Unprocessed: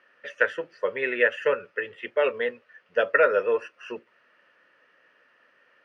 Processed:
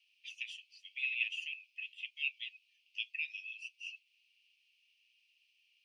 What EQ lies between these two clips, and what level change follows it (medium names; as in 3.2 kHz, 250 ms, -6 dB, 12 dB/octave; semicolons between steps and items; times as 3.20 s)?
steep high-pass 2.4 kHz 96 dB/octave; 0.0 dB